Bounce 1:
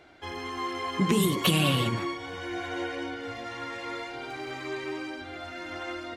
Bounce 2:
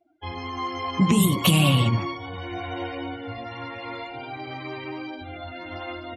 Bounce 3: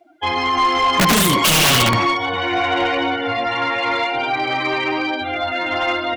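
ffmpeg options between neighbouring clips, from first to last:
-af "afftdn=nr=33:nf=-43,equalizer=f=100:t=o:w=0.67:g=4,equalizer=f=400:t=o:w=0.67:g=-10,equalizer=f=1.6k:t=o:w=0.67:g=-11,equalizer=f=4k:t=o:w=0.67:g=-5,volume=7dB"
-filter_complex "[0:a]asplit=2[a][b];[b]highpass=f=720:p=1,volume=25dB,asoftclip=type=tanh:threshold=-6dB[c];[a][c]amix=inputs=2:normalize=0,lowpass=f=5.2k:p=1,volume=-6dB,aeval=exprs='(mod(2.99*val(0)+1,2)-1)/2.99':c=same"

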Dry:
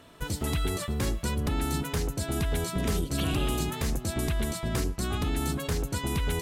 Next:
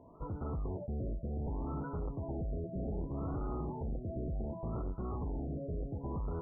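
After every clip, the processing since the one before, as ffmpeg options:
-af "asoftclip=type=tanh:threshold=-31dB,afftfilt=real='re*lt(b*sr/1024,690*pow(1500/690,0.5+0.5*sin(2*PI*0.66*pts/sr)))':imag='im*lt(b*sr/1024,690*pow(1500/690,0.5+0.5*sin(2*PI*0.66*pts/sr)))':win_size=1024:overlap=0.75,volume=-2.5dB"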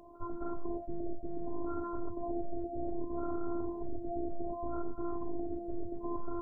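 -af "afftfilt=real='hypot(re,im)*cos(PI*b)':imag='0':win_size=512:overlap=0.75,volume=6.5dB"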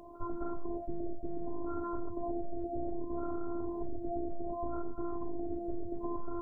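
-af "acompressor=threshold=-34dB:ratio=6,volume=3.5dB"

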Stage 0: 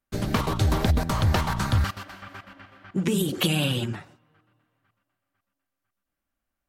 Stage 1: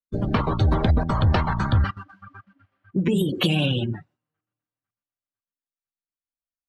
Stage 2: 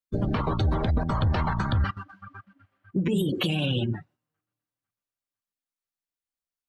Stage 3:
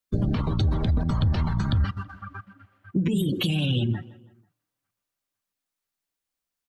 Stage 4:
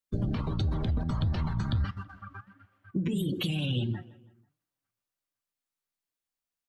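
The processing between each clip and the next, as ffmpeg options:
-af "afftdn=nr=26:nf=-33,highshelf=f=8.4k:g=-10.5,acontrast=89,volume=-4dB"
-af "alimiter=limit=-17dB:level=0:latency=1:release=109"
-filter_complex "[0:a]acompressor=threshold=-25dB:ratio=6,asplit=2[a][b];[b]adelay=163,lowpass=f=2.7k:p=1,volume=-21.5dB,asplit=2[c][d];[d]adelay=163,lowpass=f=2.7k:p=1,volume=0.47,asplit=2[e][f];[f]adelay=163,lowpass=f=2.7k:p=1,volume=0.47[g];[a][c][e][g]amix=inputs=4:normalize=0,acrossover=split=300|3000[h][i][j];[i]acompressor=threshold=-43dB:ratio=6[k];[h][k][j]amix=inputs=3:normalize=0,volume=6.5dB"
-af "flanger=delay=5.5:depth=3.5:regen=87:speed=1.5:shape=sinusoidal,volume=-1dB"

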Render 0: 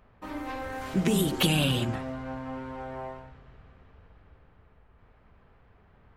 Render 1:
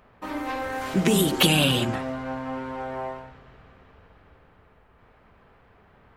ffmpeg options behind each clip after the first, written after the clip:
-af "lowshelf=f=140:g=-9.5,volume=6.5dB"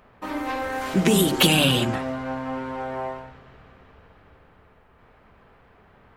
-af "aeval=exprs='0.335*(abs(mod(val(0)/0.335+3,4)-2)-1)':c=same,bandreject=f=50:t=h:w=6,bandreject=f=100:t=h:w=6,bandreject=f=150:t=h:w=6,volume=2dB"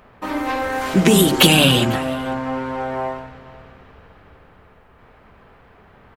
-af "aecho=1:1:498:0.0794,volume=5.5dB"

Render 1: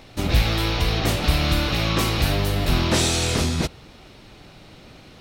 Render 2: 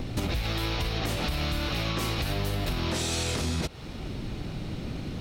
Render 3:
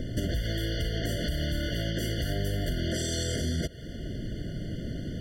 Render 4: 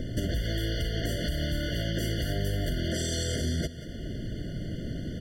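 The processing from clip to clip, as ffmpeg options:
-filter_complex "[0:a]acrossover=split=340|470|2900[a][b][c][d];[a]acompressor=mode=upward:threshold=-26dB:ratio=2.5[e];[e][b][c][d]amix=inputs=4:normalize=0,alimiter=limit=-15dB:level=0:latency=1:release=61,acompressor=threshold=-29dB:ratio=6,volume=3dB"
-af "afftfilt=real='re*eq(mod(floor(b*sr/1024/710),2),0)':imag='im*eq(mod(floor(b*sr/1024/710),2),0)':win_size=1024:overlap=0.75"
-af "aecho=1:1:183:0.178"

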